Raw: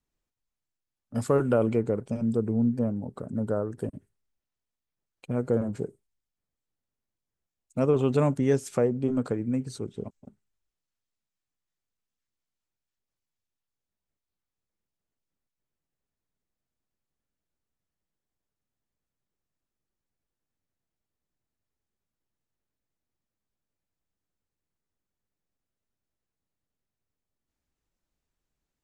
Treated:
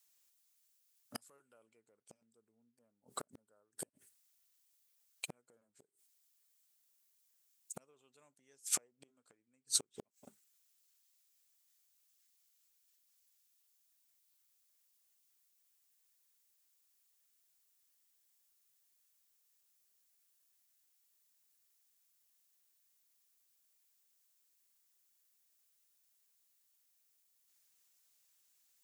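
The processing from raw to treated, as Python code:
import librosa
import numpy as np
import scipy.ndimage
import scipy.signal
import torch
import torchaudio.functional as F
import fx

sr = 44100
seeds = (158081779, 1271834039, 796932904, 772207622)

y = fx.gate_flip(x, sr, shuts_db=-24.0, range_db=-39)
y = np.diff(y, prepend=0.0)
y = F.gain(torch.from_numpy(y), 17.0).numpy()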